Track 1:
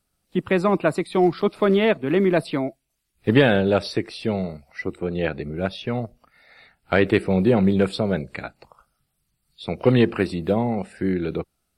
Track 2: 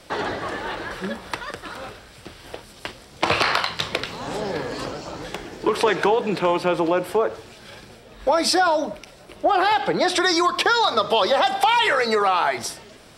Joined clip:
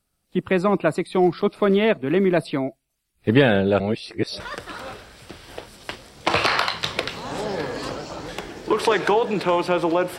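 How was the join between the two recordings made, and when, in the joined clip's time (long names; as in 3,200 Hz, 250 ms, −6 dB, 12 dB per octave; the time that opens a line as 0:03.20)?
track 1
0:03.80–0:04.40: reverse
0:04.40: continue with track 2 from 0:01.36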